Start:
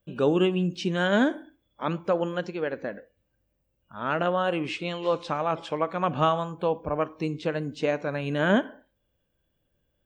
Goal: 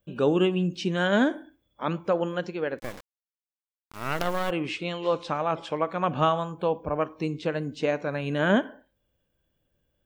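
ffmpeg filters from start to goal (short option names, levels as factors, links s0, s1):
-filter_complex "[0:a]asplit=3[s0][s1][s2];[s0]afade=t=out:st=2.78:d=0.02[s3];[s1]acrusher=bits=4:dc=4:mix=0:aa=0.000001,afade=t=in:st=2.78:d=0.02,afade=t=out:st=4.49:d=0.02[s4];[s2]afade=t=in:st=4.49:d=0.02[s5];[s3][s4][s5]amix=inputs=3:normalize=0"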